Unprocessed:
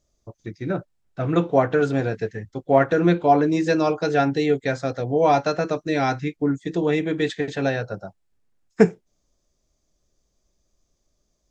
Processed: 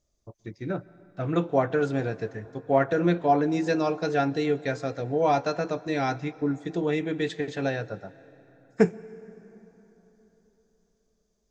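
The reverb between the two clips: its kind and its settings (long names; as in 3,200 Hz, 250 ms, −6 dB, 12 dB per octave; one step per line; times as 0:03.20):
dense smooth reverb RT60 4 s, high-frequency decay 0.6×, pre-delay 110 ms, DRR 19.5 dB
level −5 dB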